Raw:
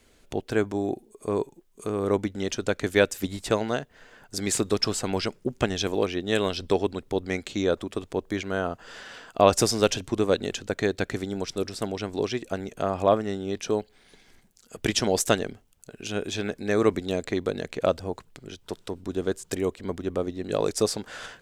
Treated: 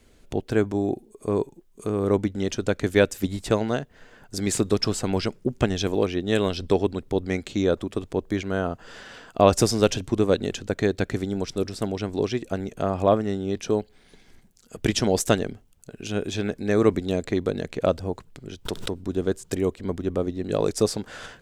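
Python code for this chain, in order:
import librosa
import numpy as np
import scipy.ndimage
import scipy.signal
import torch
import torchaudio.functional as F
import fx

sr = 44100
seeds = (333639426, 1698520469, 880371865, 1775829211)

y = fx.low_shelf(x, sr, hz=380.0, db=7.0)
y = fx.pre_swell(y, sr, db_per_s=60.0, at=(18.65, 19.06))
y = F.gain(torch.from_numpy(y), -1.0).numpy()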